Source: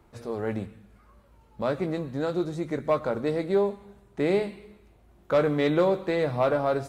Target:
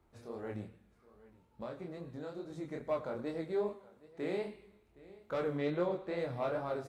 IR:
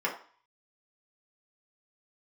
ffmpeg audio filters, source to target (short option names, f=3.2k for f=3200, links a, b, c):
-filter_complex "[0:a]aecho=1:1:768:0.0944,asettb=1/sr,asplit=3[a][b][c];[a]atrim=end=1.634[d];[b]atrim=start=1.63:end=2.5,asetpts=PTS-STARTPTS,afade=t=in:d=0.004:c=qsin,afade=t=out:st=0.866:d=0.004:c=qsin,acompressor=threshold=-29dB:ratio=4[e];[c]atrim=start=2.496[f];[d][e]acrossfade=d=0.004:c1=hsin:c2=qsin[g];[g][f]acrossfade=d=0.004:c1=qsin:c2=hsin,asettb=1/sr,asplit=3[h][i][j];[h]atrim=end=3.734[k];[i]atrim=start=3.73:end=4.43,asetpts=PTS-STARTPTS,afade=t=in:d=0.004:c=qsin,afade=t=out:st=0.696:d=0.004:c=qsin,highpass=f=170:p=1[l];[j]atrim=start=4.426[m];[k][l]acrossfade=d=0.004:c1=hsin:c2=qsin[n];[n][m]acrossfade=d=0.004:c1=qsin:c2=hsin,asettb=1/sr,asplit=3[o][p][q];[o]atrim=end=5.574[r];[p]atrim=start=5.57:end=6.17,asetpts=PTS-STARTPTS,afade=t=in:d=0.004:c=qsin,afade=t=out:st=0.596:d=0.004:c=qsin,highshelf=f=4.9k:g=-7[s];[q]atrim=start=6.166[t];[r][s]acrossfade=d=0.004:c1=hsin:c2=qsin[u];[u][t]acrossfade=d=0.004:c1=qsin:c2=hsin,asplit=2[v][w];[1:a]atrim=start_sample=2205,adelay=86[x];[w][x]afir=irnorm=-1:irlink=0,volume=-27dB[y];[v][y]amix=inputs=2:normalize=0,flanger=delay=22.5:depth=6.1:speed=2.4,volume=-8.5dB"